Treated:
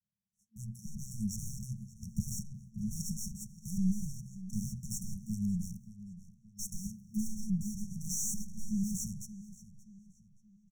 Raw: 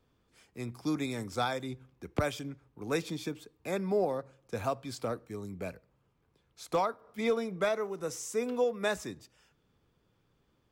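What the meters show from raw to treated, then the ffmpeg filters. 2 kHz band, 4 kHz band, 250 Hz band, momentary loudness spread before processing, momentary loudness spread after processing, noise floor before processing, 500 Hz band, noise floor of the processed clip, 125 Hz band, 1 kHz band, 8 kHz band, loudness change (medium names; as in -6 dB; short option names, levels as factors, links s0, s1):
under -40 dB, -7.5 dB, +1.5 dB, 13 LU, 16 LU, -73 dBFS, under -40 dB, -69 dBFS, +3.5 dB, under -40 dB, +7.0 dB, -4.0 dB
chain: -filter_complex "[0:a]agate=range=0.0631:threshold=0.00126:ratio=16:detection=peak,aeval=exprs='max(val(0),0)':c=same,equalizer=f=100:t=o:w=0.67:g=4,equalizer=f=250:t=o:w=0.67:g=12,equalizer=f=630:t=o:w=0.67:g=8,equalizer=f=2500:t=o:w=0.67:g=6,dynaudnorm=f=210:g=13:m=3.76,asplit=2[s0][s1];[s1]highpass=f=720:p=1,volume=39.8,asoftclip=type=tanh:threshold=0.316[s2];[s0][s2]amix=inputs=2:normalize=0,lowpass=f=2400:p=1,volume=0.501,afftfilt=real='re*(1-between(b*sr/4096,220,5500))':imag='im*(1-between(b*sr/4096,220,5500))':win_size=4096:overlap=0.75,asplit=2[s3][s4];[s4]adelay=576,lowpass=f=4500:p=1,volume=0.178,asplit=2[s5][s6];[s6]adelay=576,lowpass=f=4500:p=1,volume=0.43,asplit=2[s7][s8];[s8]adelay=576,lowpass=f=4500:p=1,volume=0.43,asplit=2[s9][s10];[s10]adelay=576,lowpass=f=4500:p=1,volume=0.43[s11];[s5][s7][s9][s11]amix=inputs=4:normalize=0[s12];[s3][s12]amix=inputs=2:normalize=0,volume=0.447"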